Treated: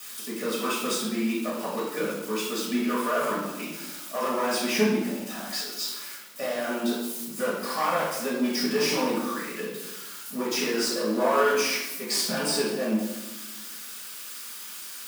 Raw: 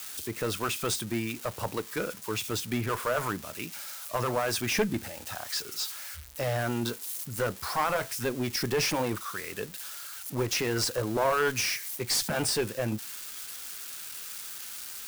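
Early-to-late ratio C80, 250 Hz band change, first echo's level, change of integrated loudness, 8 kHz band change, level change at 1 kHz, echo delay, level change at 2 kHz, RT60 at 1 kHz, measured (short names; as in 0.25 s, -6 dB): 4.5 dB, +6.5 dB, none, +3.0 dB, +0.5 dB, +3.0 dB, none, +2.0 dB, 1.0 s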